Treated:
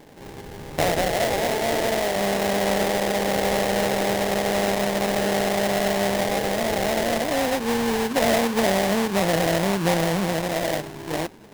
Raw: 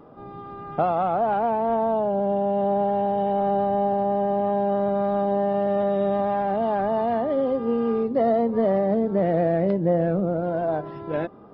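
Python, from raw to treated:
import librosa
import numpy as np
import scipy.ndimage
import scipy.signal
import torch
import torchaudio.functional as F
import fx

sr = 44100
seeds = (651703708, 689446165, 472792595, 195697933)

y = fx.cheby1_highpass(x, sr, hz=310.0, order=2, at=(1.11, 2.16))
y = fx.sample_hold(y, sr, seeds[0], rate_hz=1300.0, jitter_pct=20)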